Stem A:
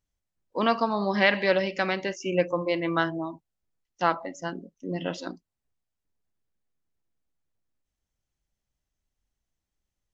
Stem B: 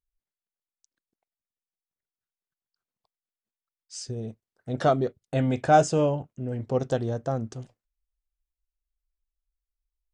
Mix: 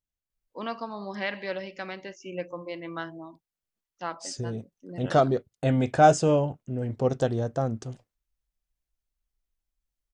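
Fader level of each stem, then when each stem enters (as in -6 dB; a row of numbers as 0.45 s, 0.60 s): -10.0 dB, +1.0 dB; 0.00 s, 0.30 s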